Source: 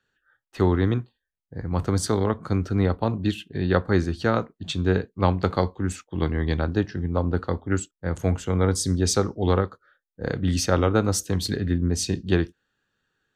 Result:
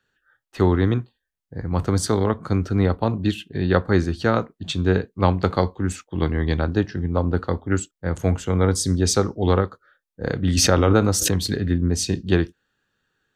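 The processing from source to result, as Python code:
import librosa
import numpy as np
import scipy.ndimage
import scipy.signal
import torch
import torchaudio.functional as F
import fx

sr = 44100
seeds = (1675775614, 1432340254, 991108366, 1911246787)

y = fx.pre_swell(x, sr, db_per_s=21.0, at=(10.57, 11.44))
y = F.gain(torch.from_numpy(y), 2.5).numpy()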